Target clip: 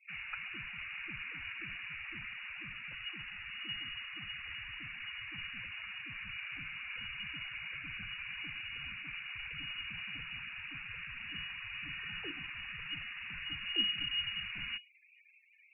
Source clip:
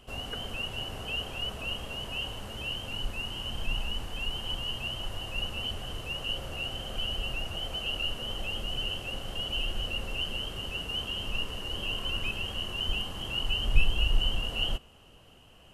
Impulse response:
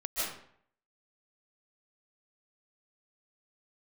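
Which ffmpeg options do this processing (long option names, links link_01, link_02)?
-filter_complex "[0:a]acrossover=split=240 2100:gain=0.178 1 0.0794[link_01][link_02][link_03];[link_01][link_02][link_03]amix=inputs=3:normalize=0,lowpass=frequency=2500:width_type=q:width=0.5098,lowpass=frequency=2500:width_type=q:width=0.6013,lowpass=frequency=2500:width_type=q:width=0.9,lowpass=frequency=2500:width_type=q:width=2.563,afreqshift=-2900,afftfilt=real='re*gte(hypot(re,im),0.00282)':imag='im*gte(hypot(re,im),0.00282)':win_size=1024:overlap=0.75,volume=1dB"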